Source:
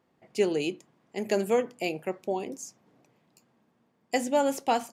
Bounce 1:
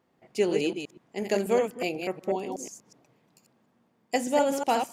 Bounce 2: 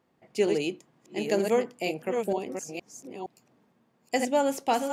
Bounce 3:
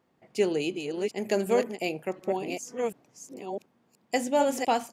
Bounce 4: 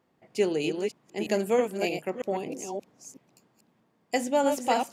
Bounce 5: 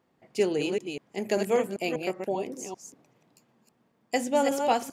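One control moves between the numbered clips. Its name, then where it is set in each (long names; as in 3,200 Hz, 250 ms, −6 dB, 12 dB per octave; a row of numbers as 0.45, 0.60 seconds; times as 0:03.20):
delay that plays each chunk backwards, delay time: 122, 466, 732, 317, 196 milliseconds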